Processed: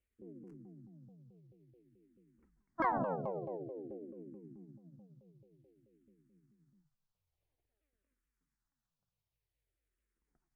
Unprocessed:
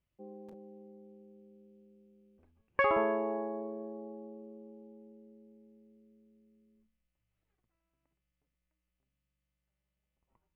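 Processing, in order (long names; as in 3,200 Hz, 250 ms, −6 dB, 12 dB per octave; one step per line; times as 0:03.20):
pitch shifter swept by a sawtooth −10 semitones, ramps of 217 ms
frequency shifter mixed with the dry sound −0.51 Hz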